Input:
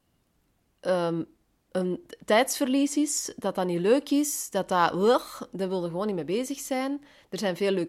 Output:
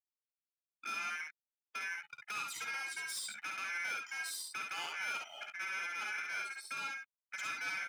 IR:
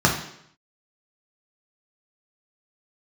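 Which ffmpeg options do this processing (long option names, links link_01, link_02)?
-af "adynamicsmooth=sensitivity=3:basefreq=7000,acrusher=bits=6:mix=0:aa=0.000001,aecho=1:1:1.8:0.48,afftdn=noise_reduction=23:noise_floor=-39,acompressor=threshold=-26dB:ratio=6,aeval=exprs='val(0)*sin(2*PI*1900*n/s)':channel_layout=same,asoftclip=type=tanh:threshold=-34dB,highpass=150,lowshelf=frequency=390:gain=-5.5,aecho=1:1:14|54|67:0.15|0.501|0.562,volume=-3dB"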